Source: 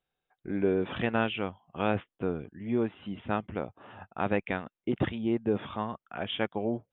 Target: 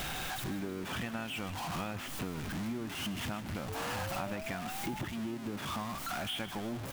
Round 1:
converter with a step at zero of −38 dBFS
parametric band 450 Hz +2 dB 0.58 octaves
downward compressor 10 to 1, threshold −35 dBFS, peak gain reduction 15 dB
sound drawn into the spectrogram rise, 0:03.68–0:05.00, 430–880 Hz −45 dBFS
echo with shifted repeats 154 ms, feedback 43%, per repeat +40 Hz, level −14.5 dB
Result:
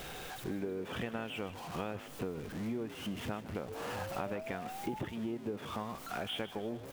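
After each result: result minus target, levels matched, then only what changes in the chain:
500 Hz band +5.0 dB; converter with a step at zero: distortion −7 dB
change: parametric band 450 Hz −10 dB 0.58 octaves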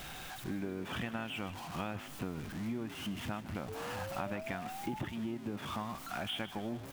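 converter with a step at zero: distortion −7 dB
change: converter with a step at zero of −29 dBFS

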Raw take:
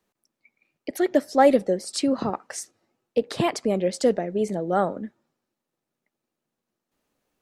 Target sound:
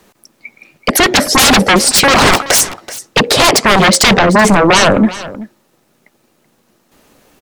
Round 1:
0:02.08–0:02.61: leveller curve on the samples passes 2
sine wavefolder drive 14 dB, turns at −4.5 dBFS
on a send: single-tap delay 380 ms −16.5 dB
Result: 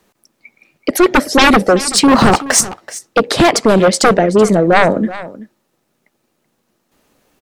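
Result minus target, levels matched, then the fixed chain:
sine wavefolder: distortion −15 dB
0:02.08–0:02.61: leveller curve on the samples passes 2
sine wavefolder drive 23 dB, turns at −4.5 dBFS
on a send: single-tap delay 380 ms −16.5 dB

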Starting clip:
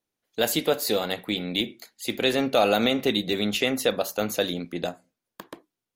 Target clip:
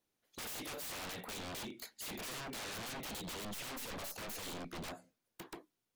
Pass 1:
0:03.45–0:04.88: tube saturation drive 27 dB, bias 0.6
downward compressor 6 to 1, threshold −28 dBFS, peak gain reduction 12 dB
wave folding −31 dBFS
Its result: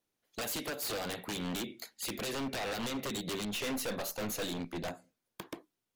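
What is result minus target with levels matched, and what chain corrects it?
wave folding: distortion −15 dB
0:03.45–0:04.88: tube saturation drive 27 dB, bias 0.6
downward compressor 6 to 1, threshold −28 dBFS, peak gain reduction 12 dB
wave folding −39 dBFS

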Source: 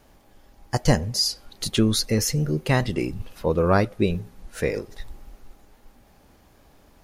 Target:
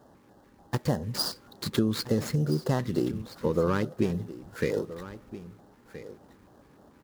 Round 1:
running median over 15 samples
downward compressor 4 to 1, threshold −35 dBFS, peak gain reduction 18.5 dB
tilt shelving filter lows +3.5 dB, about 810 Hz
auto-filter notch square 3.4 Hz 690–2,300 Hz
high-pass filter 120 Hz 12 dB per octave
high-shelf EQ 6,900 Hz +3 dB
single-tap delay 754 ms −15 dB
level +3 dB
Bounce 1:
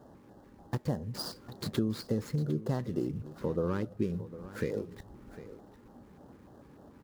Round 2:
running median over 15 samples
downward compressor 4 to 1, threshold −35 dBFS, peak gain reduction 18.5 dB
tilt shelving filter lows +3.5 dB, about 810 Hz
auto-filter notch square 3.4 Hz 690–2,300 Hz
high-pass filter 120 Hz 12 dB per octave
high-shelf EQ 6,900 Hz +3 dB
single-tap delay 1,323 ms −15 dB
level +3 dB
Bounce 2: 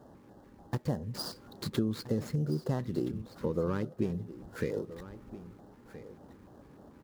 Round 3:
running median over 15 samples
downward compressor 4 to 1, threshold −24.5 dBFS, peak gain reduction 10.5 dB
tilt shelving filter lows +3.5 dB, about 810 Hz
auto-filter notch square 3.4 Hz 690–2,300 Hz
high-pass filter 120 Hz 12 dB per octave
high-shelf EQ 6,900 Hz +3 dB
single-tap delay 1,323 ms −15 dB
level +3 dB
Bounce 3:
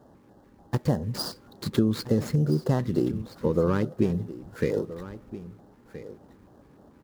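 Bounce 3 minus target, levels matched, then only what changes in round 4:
1,000 Hz band −2.5 dB
remove: tilt shelving filter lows +3.5 dB, about 810 Hz

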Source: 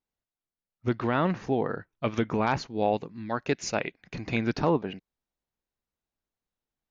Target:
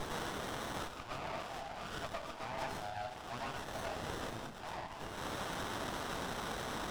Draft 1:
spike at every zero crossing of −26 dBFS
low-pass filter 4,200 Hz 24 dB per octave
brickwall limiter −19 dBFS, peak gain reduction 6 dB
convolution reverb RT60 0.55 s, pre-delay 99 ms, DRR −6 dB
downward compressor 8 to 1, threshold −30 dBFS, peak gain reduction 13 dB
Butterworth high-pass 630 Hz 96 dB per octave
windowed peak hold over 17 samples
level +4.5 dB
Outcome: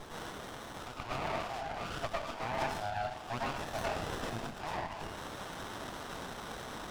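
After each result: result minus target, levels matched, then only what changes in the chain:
downward compressor: peak gain reduction −6 dB; spike at every zero crossing: distortion −7 dB
change: downward compressor 8 to 1, threshold −37 dBFS, peak gain reduction 19 dB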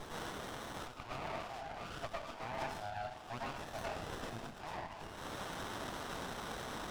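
spike at every zero crossing: distortion −7 dB
change: spike at every zero crossing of −19 dBFS

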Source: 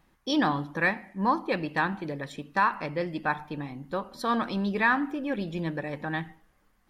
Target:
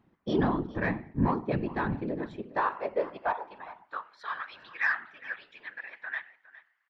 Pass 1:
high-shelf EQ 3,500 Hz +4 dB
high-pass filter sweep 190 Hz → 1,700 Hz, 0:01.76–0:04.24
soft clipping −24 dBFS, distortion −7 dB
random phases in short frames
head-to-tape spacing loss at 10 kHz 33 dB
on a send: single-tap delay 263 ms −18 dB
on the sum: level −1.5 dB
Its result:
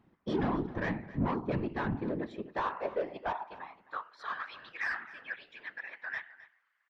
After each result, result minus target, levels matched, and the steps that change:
echo 147 ms early; soft clipping: distortion +10 dB
change: single-tap delay 410 ms −18 dB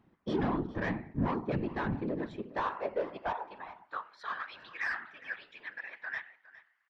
soft clipping: distortion +10 dB
change: soft clipping −13.5 dBFS, distortion −17 dB

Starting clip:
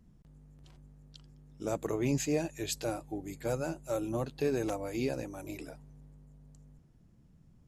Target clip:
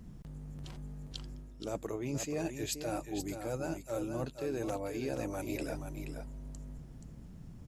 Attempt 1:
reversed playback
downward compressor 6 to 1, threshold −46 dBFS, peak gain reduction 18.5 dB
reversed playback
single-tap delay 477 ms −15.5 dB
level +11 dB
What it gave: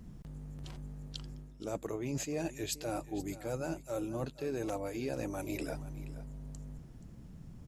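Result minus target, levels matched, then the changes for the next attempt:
echo-to-direct −8 dB
change: single-tap delay 477 ms −7.5 dB

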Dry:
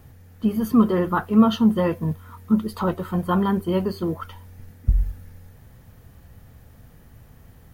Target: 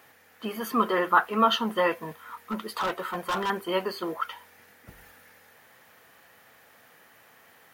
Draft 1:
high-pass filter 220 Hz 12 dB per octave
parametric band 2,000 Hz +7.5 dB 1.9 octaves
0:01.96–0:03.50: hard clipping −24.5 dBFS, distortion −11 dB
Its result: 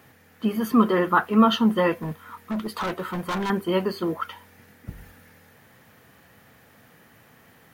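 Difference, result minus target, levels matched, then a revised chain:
250 Hz band +6.5 dB
high-pass filter 500 Hz 12 dB per octave
parametric band 2,000 Hz +7.5 dB 1.9 octaves
0:01.96–0:03.50: hard clipping −24.5 dBFS, distortion −11 dB

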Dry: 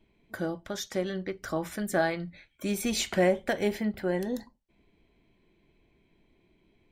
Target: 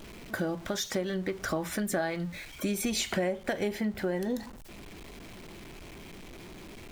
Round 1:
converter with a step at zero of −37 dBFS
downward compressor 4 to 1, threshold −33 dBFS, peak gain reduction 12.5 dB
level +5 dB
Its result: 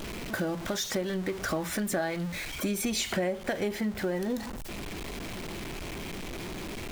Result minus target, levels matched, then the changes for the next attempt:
converter with a step at zero: distortion +9 dB
change: converter with a step at zero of −46.5 dBFS

